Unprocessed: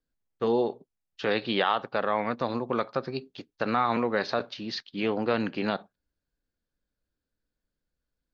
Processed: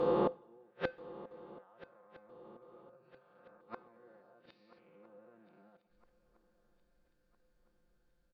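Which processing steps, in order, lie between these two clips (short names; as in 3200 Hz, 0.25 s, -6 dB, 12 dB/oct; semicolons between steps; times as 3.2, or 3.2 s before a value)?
spectral swells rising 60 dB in 2.65 s; auto swell 0.458 s; high shelf 3000 Hz -9.5 dB; comb 5.7 ms, depth 98%; limiter -13 dBFS, peak gain reduction 7 dB; treble ducked by the level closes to 1500 Hz, closed at -19.5 dBFS; AGC gain up to 5.5 dB; flipped gate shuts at -16 dBFS, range -42 dB; resonator 510 Hz, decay 0.25 s, harmonics odd, mix 70%; on a send: swung echo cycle 1.31 s, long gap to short 3:1, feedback 41%, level -18.5 dB; on the sum: two-slope reverb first 0.56 s, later 2 s, from -16 dB, DRR 20 dB; gain +6.5 dB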